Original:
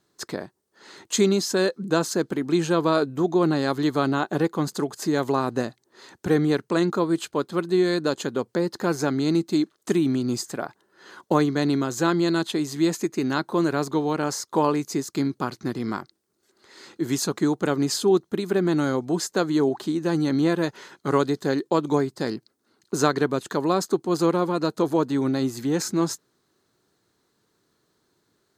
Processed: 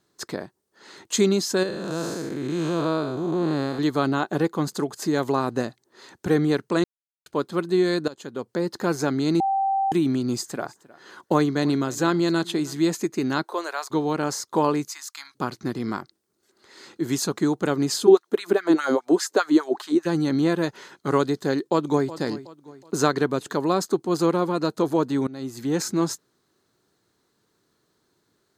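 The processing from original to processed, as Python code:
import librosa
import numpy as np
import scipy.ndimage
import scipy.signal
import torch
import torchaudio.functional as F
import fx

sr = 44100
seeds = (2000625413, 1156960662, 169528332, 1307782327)

y = fx.spec_blur(x, sr, span_ms=254.0, at=(1.63, 3.79))
y = fx.echo_single(y, sr, ms=312, db=-21.0, at=(10.55, 12.76), fade=0.02)
y = fx.highpass(y, sr, hz=fx.line((13.42, 330.0), (13.9, 890.0)), slope=24, at=(13.42, 13.9), fade=0.02)
y = fx.cheby2_highpass(y, sr, hz=480.0, order=4, stop_db=40, at=(14.87, 15.34), fade=0.02)
y = fx.filter_lfo_highpass(y, sr, shape='sine', hz=4.9, low_hz=270.0, high_hz=1800.0, q=2.5, at=(18.06, 20.05), fade=0.02)
y = fx.echo_throw(y, sr, start_s=21.56, length_s=0.55, ms=370, feedback_pct=40, wet_db=-15.5)
y = fx.edit(y, sr, fx.silence(start_s=6.84, length_s=0.42),
    fx.fade_in_from(start_s=8.08, length_s=0.64, floor_db=-18.0),
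    fx.bleep(start_s=9.4, length_s=0.52, hz=780.0, db=-19.5),
    fx.fade_in_from(start_s=25.27, length_s=0.47, floor_db=-20.5), tone=tone)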